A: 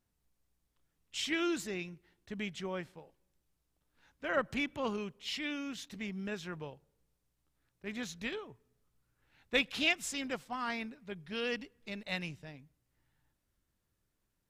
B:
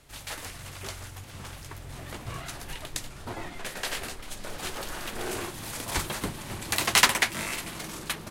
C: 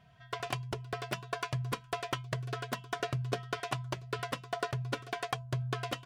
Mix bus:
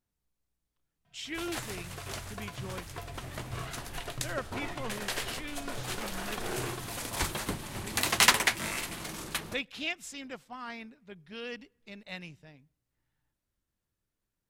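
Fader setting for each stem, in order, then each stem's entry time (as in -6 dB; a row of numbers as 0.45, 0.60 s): -4.5, -2.0, -8.5 dB; 0.00, 1.25, 1.05 s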